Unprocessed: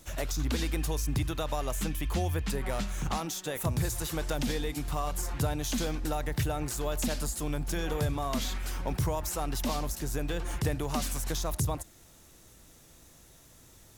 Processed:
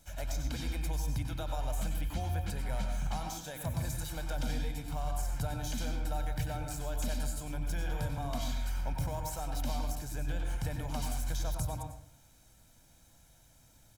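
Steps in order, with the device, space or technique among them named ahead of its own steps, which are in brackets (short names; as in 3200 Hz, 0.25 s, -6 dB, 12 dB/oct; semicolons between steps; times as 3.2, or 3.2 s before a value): microphone above a desk (comb 1.3 ms, depth 60%; reverb RT60 0.60 s, pre-delay 90 ms, DRR 3.5 dB); gain -9 dB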